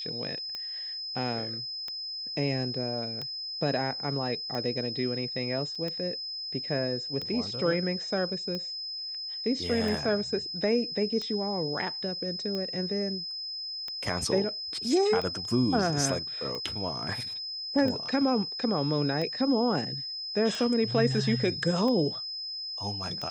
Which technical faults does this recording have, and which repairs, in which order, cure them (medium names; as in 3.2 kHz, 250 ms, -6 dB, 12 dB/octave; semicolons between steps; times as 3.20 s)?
tick 45 rpm -22 dBFS
whine 5.1 kHz -34 dBFS
5.75–5.76 s: dropout 5.3 ms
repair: de-click; band-stop 5.1 kHz, Q 30; interpolate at 5.75 s, 5.3 ms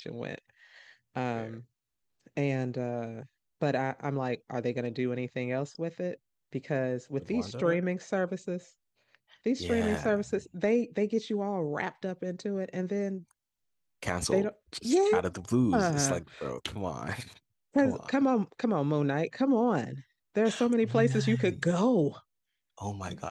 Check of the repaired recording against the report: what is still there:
nothing left